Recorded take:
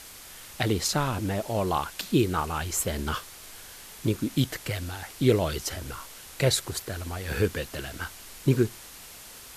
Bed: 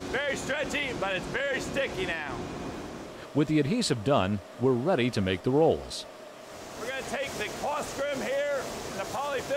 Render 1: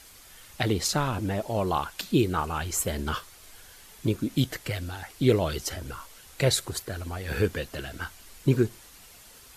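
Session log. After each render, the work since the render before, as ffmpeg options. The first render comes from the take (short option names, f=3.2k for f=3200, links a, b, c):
-af "afftdn=nr=7:nf=-46"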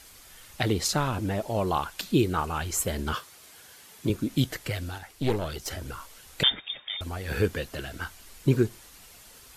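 -filter_complex "[0:a]asettb=1/sr,asplit=3[a][b][c];[a]atrim=end=3.134[d];[b]atrim=start=3.13:end=4.1,asetpts=PTS-STARTPTS,afade=t=in:d=0.004:c=qsin,afade=t=out:st=0.966:d=0.004:c=qsin,highpass=120[e];[c]atrim=start=4.096[f];[d][e]acrossfade=d=0.004:c1=hsin:c2=qsin[g];[g][f]acrossfade=d=0.004:c1=qsin:c2=hsin,asettb=1/sr,asplit=3[h][i][j];[h]atrim=end=4.984[k];[i]atrim=start=4.98:end=5.68,asetpts=PTS-STARTPTS,afade=t=in:d=0.004:c=qsin,afade=t=out:st=0.696:d=0.004:c=qsin,aeval=exprs='(tanh(7.94*val(0)+0.75)-tanh(0.75))/7.94':c=same[l];[j]atrim=start=5.676[m];[k][l]acrossfade=d=0.004:c1=hsin:c2=qsin[n];[n][m]acrossfade=d=0.004:c1=qsin:c2=hsin,asettb=1/sr,asplit=3[o][p][q];[o]atrim=end=6.434[r];[p]atrim=start=6.43:end=7.01,asetpts=PTS-STARTPTS,afade=t=in:d=0.004:c=qsin,afade=t=out:st=0.576:d=0.004:c=qsin,lowpass=f=3.1k:t=q:w=0.5098,lowpass=f=3.1k:t=q:w=0.6013,lowpass=f=3.1k:t=q:w=0.9,lowpass=f=3.1k:t=q:w=2.563,afreqshift=-3700[s];[q]atrim=start=7.006[t];[r][s]acrossfade=d=0.004:c1=hsin:c2=qsin[u];[u][t]acrossfade=d=0.004:c1=qsin:c2=hsin"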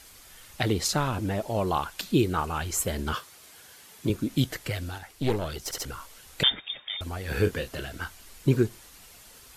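-filter_complex "[0:a]asettb=1/sr,asplit=3[a][b][c];[a]atrim=end=7.314[d];[b]atrim=start=7.31:end=7.86,asetpts=PTS-STARTPTS,afade=t=in:d=0.004:c=qsin,afade=t=out:st=0.546:d=0.004:c=qsin,asplit=2[e][f];[f]adelay=31,volume=-9dB[g];[e][g]amix=inputs=2:normalize=0,atrim=end_sample=24255[h];[c]atrim=start=7.856[i];[d][h]acrossfade=d=0.004:c1=hsin:c2=qsin[j];[j][i]acrossfade=d=0.004:c1=qsin:c2=hsin,asplit=4[k][l][m][n];[k]atrim=end=5.712[o];[l]atrim=start=5.638:end=5.712[p];[m]atrim=start=5.638:end=5.712[q];[n]atrim=start=5.848[r];[o][p]acrossfade=d=0.004:c1=hsin:c2=hsin[s];[s][q]acrossfade=d=0.004:c1=hsin:c2=hsin[t];[t][r]acrossfade=d=0.004:c1=hsin:c2=hsin"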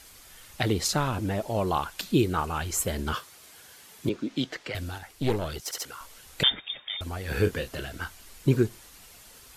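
-filter_complex "[0:a]asettb=1/sr,asplit=3[a][b][c];[a]atrim=end=4.094[d];[b]atrim=start=4.09:end=4.75,asetpts=PTS-STARTPTS,afade=t=in:d=0.004:c=qsin,afade=t=out:st=0.656:d=0.004:c=qsin,acrossover=split=200 6200:gain=0.112 1 0.0631[e][f][g];[e][f][g]amix=inputs=3:normalize=0[h];[c]atrim=start=4.746[i];[d][h]acrossfade=d=0.004:c1=hsin:c2=qsin[j];[j][i]acrossfade=d=0.004:c1=qsin:c2=hsin,asettb=1/sr,asplit=3[k][l][m];[k]atrim=end=5.604[n];[l]atrim=start=5.6:end=6.01,asetpts=PTS-STARTPTS,afade=t=in:d=0.004:c=qsin,afade=t=out:st=0.406:d=0.004:c=qsin,highpass=f=720:p=1[o];[m]atrim=start=6.006[p];[n][o]acrossfade=d=0.004:c1=hsin:c2=qsin[q];[q][p]acrossfade=d=0.004:c1=qsin:c2=hsin"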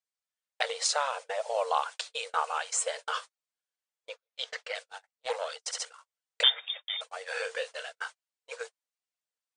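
-af "afftfilt=real='re*between(b*sr/4096,450,9700)':imag='im*between(b*sr/4096,450,9700)':win_size=4096:overlap=0.75,agate=range=-44dB:threshold=-39dB:ratio=16:detection=peak"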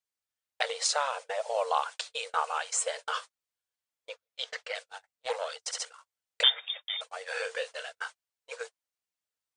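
-af "equalizer=f=92:w=7:g=11.5"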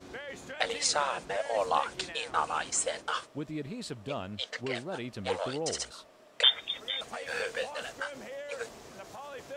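-filter_complex "[1:a]volume=-12.5dB[a];[0:a][a]amix=inputs=2:normalize=0"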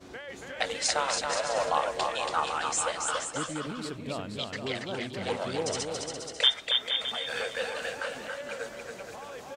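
-af "aecho=1:1:280|476|613.2|709.2|776.5:0.631|0.398|0.251|0.158|0.1"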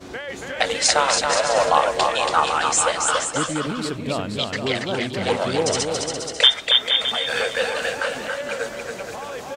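-af "volume=10dB,alimiter=limit=-2dB:level=0:latency=1"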